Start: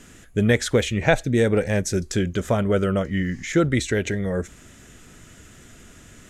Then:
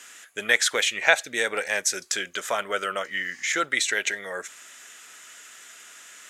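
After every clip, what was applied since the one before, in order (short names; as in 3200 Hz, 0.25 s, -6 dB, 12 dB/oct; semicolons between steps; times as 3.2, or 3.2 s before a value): HPF 1100 Hz 12 dB/oct; gain +5.5 dB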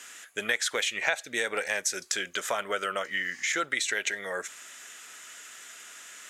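compressor 3:1, threshold -26 dBFS, peak gain reduction 10.5 dB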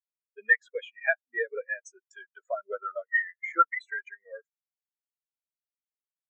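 spectral expander 4:1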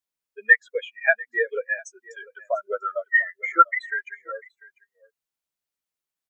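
echo 0.695 s -22 dB; gain +6.5 dB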